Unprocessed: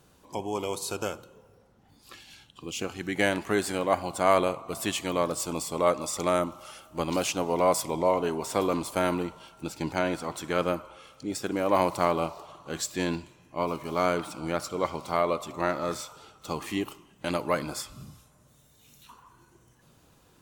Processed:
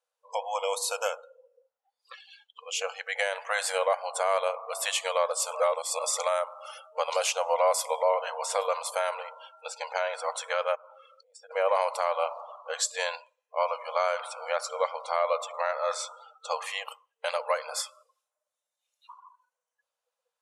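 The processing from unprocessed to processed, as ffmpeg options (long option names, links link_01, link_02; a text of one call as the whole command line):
ffmpeg -i in.wav -filter_complex "[0:a]asettb=1/sr,asplit=3[link_01][link_02][link_03];[link_01]atrim=end=10.754[link_04];[link_02]atrim=start=10.75:end=11.51,asetpts=PTS-STARTPTS,afade=type=in:duration=0.004:curve=qsin,afade=type=out:start_time=0.756:duration=0.004:curve=qsin,acompressor=threshold=-50dB:ratio=3:attack=3.2:release=140:knee=1:detection=peak[link_05];[link_03]atrim=start=11.506[link_06];[link_04][link_05]acrossfade=duration=0.004:curve1=hsin:curve2=qsin[link_07];[link_07][link_06]acrossfade=duration=0.004:curve1=qsin:curve2=hsin,asplit=3[link_08][link_09][link_10];[link_08]atrim=end=5.552[link_11];[link_09]atrim=start=5.548:end=5.992,asetpts=PTS-STARTPTS,areverse[link_12];[link_10]atrim=start=5.988[link_13];[link_11][link_12]acrossfade=duration=0.004:curve1=hsin:curve2=hsin[link_14];[link_14][link_13]acrossfade=duration=0.004:curve1=hsin:curve2=hsin,afftdn=noise_reduction=28:noise_floor=-48,afftfilt=real='re*between(b*sr/4096,460,12000)':imag='im*between(b*sr/4096,460,12000)':win_size=4096:overlap=0.75,alimiter=limit=-19dB:level=0:latency=1:release=255,volume=4.5dB" out.wav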